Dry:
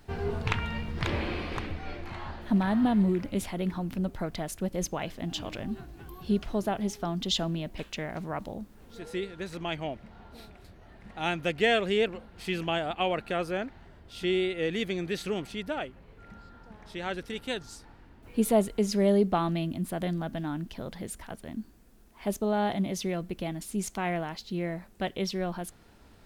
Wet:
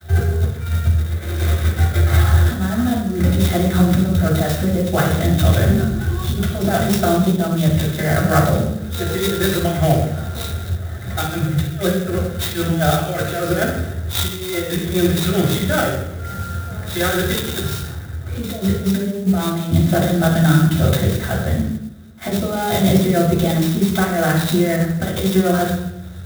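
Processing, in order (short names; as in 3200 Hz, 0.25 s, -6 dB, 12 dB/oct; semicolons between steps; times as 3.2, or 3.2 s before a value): low shelf 100 Hz +10.5 dB; expander -43 dBFS; ten-band EQ 125 Hz +5 dB, 250 Hz -9 dB, 500 Hz +4 dB, 1000 Hz -11 dB, 2000 Hz +11 dB, 4000 Hz +11 dB, 8000 Hz +5 dB; negative-ratio compressor -31 dBFS, ratio -0.5; HPF 61 Hz; reverb RT60 0.85 s, pre-delay 3 ms, DRR -11 dB; clock jitter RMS 0.043 ms; gain -8 dB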